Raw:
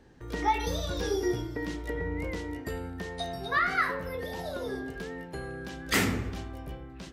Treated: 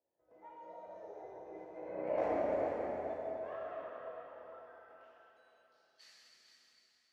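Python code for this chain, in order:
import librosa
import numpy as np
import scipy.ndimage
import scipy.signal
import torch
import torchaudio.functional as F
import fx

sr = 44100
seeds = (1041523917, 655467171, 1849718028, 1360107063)

p1 = fx.doppler_pass(x, sr, speed_mps=23, closest_m=3.3, pass_at_s=2.27)
p2 = fx.peak_eq(p1, sr, hz=3800.0, db=-7.5, octaves=0.54)
p3 = fx.cheby_harmonics(p2, sr, harmonics=(2, 3, 6), levels_db=(-7, -12, -26), full_scale_db=-18.5)
p4 = fx.filter_sweep_bandpass(p3, sr, from_hz=640.0, to_hz=4400.0, start_s=4.1, end_s=5.32, q=5.0)
p5 = p4 + fx.echo_single(p4, sr, ms=451, db=-8.5, dry=0)
p6 = fx.rev_plate(p5, sr, seeds[0], rt60_s=3.6, hf_ratio=0.9, predelay_ms=0, drr_db=-7.5)
y = p6 * librosa.db_to_amplitude(16.0)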